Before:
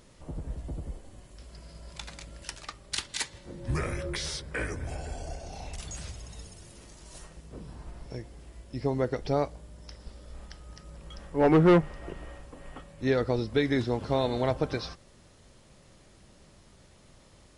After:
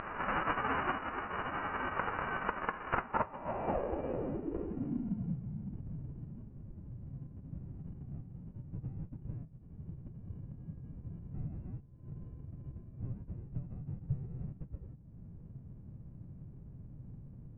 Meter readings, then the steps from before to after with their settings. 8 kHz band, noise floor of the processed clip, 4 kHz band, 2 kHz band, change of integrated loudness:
below −35 dB, −53 dBFS, below −15 dB, −2.0 dB, −10.0 dB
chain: spectral envelope flattened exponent 0.1
voice inversion scrambler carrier 2,900 Hz
upward compression, threshold −40 dBFS
high-frequency loss of the air 300 metres
downward compressor 12 to 1, threshold −41 dBFS, peak gain reduction 21 dB
low-pass filter sweep 1,300 Hz → 140 Hz, 0:02.97–0:05.53
level +11 dB

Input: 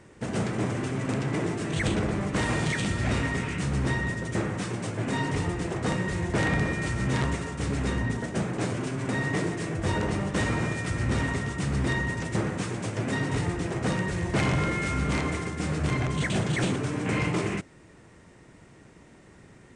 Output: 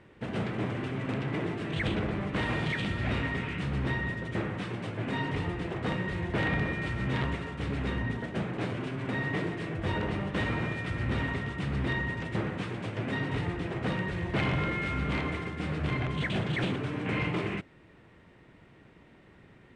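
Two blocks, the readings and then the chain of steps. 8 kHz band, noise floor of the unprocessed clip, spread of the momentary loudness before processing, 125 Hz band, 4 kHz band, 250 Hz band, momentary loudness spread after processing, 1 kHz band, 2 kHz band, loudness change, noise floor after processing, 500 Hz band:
below −15 dB, −53 dBFS, 4 LU, −4.0 dB, −3.0 dB, −4.0 dB, 4 LU, −3.5 dB, −2.5 dB, −3.5 dB, −57 dBFS, −4.0 dB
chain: high shelf with overshoot 4,700 Hz −12 dB, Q 1.5
level −4 dB

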